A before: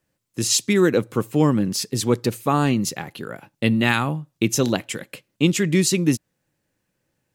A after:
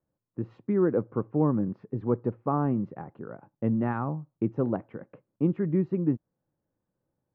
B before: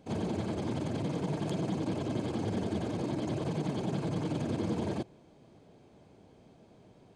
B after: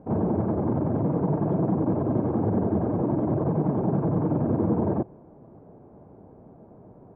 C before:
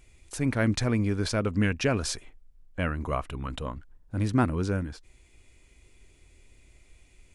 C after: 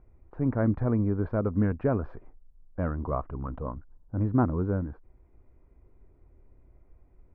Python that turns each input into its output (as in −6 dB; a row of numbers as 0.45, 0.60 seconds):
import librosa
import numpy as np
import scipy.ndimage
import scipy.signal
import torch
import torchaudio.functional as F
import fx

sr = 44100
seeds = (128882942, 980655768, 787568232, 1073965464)

y = scipy.signal.sosfilt(scipy.signal.butter(4, 1200.0, 'lowpass', fs=sr, output='sos'), x)
y = y * 10.0 ** (-12 / 20.0) / np.max(np.abs(y))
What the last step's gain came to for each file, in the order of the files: −6.5, +9.0, 0.0 decibels